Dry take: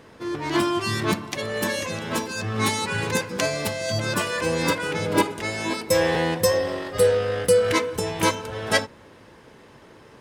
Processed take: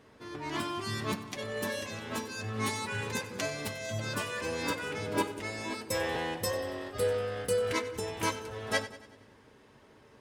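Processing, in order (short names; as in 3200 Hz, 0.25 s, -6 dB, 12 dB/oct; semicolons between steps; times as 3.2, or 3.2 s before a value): notch comb 170 Hz; split-band echo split 390 Hz, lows 0.188 s, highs 94 ms, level -16 dB; gain -8.5 dB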